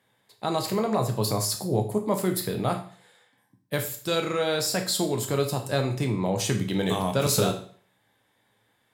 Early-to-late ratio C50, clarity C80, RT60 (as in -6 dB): 10.0 dB, 14.5 dB, 0.50 s